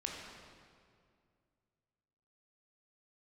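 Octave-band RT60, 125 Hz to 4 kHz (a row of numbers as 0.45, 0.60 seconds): 2.9, 2.6, 2.3, 2.1, 1.8, 1.6 seconds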